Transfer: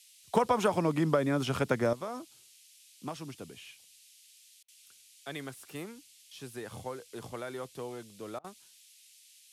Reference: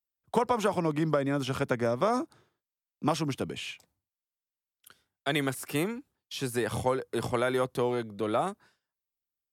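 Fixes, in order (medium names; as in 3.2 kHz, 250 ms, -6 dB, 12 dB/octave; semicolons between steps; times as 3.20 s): interpolate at 4.63/8.39 s, 51 ms; noise print and reduce 30 dB; gain correction +12 dB, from 1.93 s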